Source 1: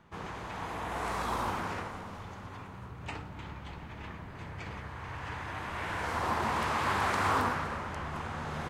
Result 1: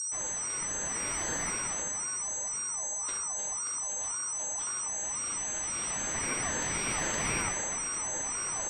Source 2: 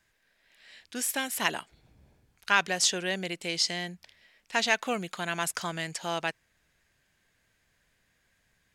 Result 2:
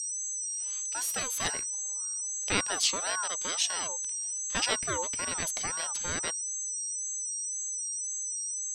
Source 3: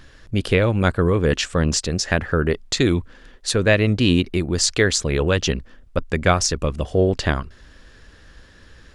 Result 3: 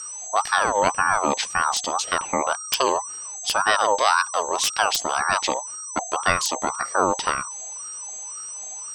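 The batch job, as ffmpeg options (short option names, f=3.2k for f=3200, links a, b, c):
-filter_complex "[0:a]equalizer=f=200:t=o:w=0.33:g=9,equalizer=f=1.6k:t=o:w=0.33:g=-4,equalizer=f=4k:t=o:w=0.33:g=8,acrossover=split=110|2300[a][b][c];[c]aeval=exprs='(mod(2.37*val(0)+1,2)-1)/2.37':c=same[d];[a][b][d]amix=inputs=3:normalize=0,aeval=exprs='val(0)+0.0447*sin(2*PI*7000*n/s)':c=same,aeval=exprs='val(0)*sin(2*PI*1000*n/s+1000*0.3/1.9*sin(2*PI*1.9*n/s))':c=same,volume=-2dB"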